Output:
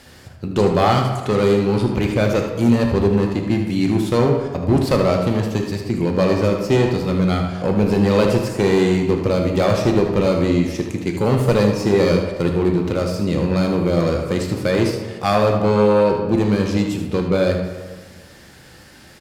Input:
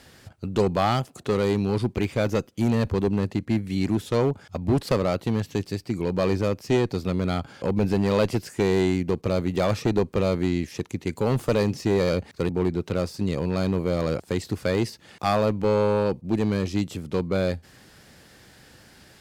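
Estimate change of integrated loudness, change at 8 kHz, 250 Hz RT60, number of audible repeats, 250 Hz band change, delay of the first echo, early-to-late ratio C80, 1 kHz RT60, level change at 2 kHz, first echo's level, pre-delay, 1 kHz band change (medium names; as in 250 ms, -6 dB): +7.0 dB, +6.0 dB, 1.4 s, 1, +7.0 dB, 77 ms, 6.5 dB, 1.4 s, +7.0 dB, -9.0 dB, 3 ms, +7.0 dB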